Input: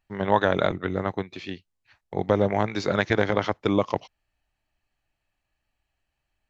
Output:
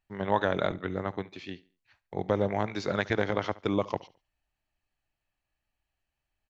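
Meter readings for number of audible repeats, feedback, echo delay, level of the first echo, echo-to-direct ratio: 2, 33%, 71 ms, -20.5 dB, -20.0 dB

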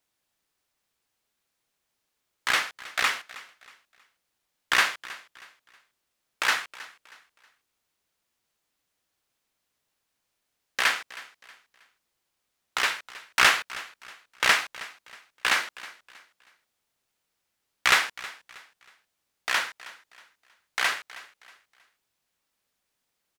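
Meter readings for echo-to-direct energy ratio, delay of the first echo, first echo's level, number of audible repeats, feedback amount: -18.0 dB, 0.318 s, -18.5 dB, 2, 34%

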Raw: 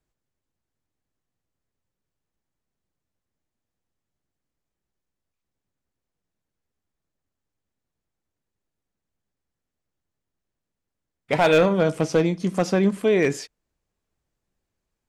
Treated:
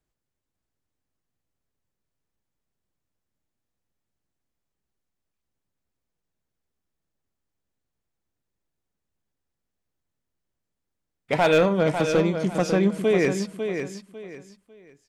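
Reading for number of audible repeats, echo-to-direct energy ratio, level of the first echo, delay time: 3, -7.0 dB, -7.5 dB, 0.549 s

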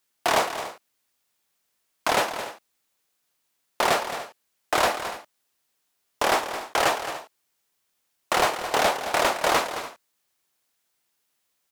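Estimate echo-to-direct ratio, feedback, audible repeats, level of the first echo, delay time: -10.0 dB, no steady repeat, 2, -11.0 dB, 0.218 s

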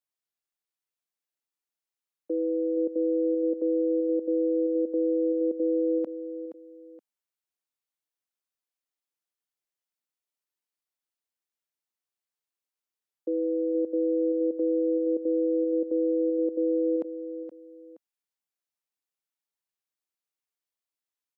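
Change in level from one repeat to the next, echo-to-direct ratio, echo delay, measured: -9.5 dB, -10.5 dB, 0.472 s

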